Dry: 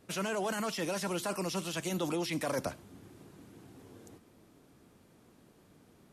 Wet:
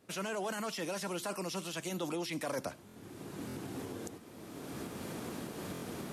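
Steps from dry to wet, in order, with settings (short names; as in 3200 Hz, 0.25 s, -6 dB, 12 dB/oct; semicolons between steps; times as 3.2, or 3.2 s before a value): recorder AGC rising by 22 dB/s; HPF 130 Hz 6 dB/oct; stuck buffer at 2.87/3.47/5.73, samples 1024, times 3; gain -3 dB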